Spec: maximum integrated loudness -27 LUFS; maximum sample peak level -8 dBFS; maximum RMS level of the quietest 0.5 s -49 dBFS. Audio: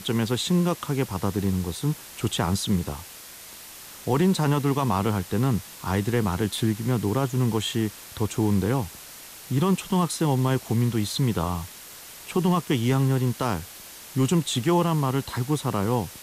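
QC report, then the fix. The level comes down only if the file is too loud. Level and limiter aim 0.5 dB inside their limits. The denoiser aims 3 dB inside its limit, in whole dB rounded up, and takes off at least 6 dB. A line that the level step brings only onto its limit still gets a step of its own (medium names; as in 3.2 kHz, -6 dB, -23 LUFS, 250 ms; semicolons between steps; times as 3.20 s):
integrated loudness -25.0 LUFS: fail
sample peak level -11.5 dBFS: pass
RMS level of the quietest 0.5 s -43 dBFS: fail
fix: noise reduction 7 dB, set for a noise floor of -43 dBFS; trim -2.5 dB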